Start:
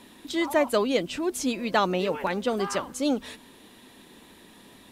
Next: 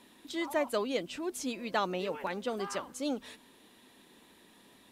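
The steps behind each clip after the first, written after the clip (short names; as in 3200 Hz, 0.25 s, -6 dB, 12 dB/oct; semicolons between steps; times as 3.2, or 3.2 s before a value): low shelf 150 Hz -6.5 dB; gain -7.5 dB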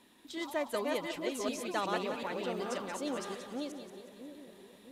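reverse delay 0.372 s, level -1.5 dB; on a send: split-band echo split 570 Hz, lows 0.659 s, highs 0.18 s, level -9 dB; on the sum: gain -4 dB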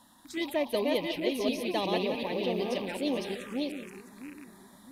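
rattling part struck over -54 dBFS, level -41 dBFS; envelope phaser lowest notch 390 Hz, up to 1400 Hz, full sweep at -34 dBFS; gain +7.5 dB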